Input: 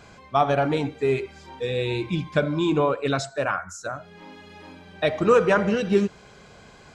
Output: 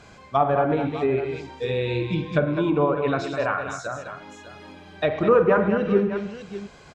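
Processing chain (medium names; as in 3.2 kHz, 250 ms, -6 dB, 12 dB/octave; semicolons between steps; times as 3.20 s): multi-tap echo 48/107/205/601 ms -12/-14.5/-8.5/-14.5 dB; low-pass that closes with the level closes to 1.6 kHz, closed at -17 dBFS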